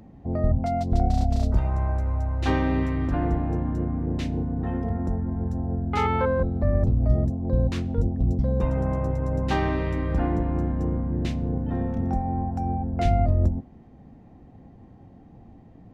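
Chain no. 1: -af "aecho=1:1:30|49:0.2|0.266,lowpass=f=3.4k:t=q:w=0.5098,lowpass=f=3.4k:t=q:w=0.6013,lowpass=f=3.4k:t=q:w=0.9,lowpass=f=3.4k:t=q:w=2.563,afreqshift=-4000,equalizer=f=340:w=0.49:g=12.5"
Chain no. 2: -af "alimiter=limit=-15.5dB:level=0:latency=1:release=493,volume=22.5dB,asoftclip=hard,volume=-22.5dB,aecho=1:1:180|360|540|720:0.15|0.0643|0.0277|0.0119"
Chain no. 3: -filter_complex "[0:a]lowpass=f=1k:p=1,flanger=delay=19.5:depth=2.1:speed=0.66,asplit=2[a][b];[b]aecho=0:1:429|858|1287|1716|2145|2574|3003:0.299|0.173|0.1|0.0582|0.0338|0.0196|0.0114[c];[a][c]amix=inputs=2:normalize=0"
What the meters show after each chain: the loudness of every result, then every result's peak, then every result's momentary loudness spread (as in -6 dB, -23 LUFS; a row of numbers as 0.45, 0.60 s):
-19.0, -29.0, -28.0 LUFS; -7.0, -20.5, -12.0 dBFS; 6, 2, 8 LU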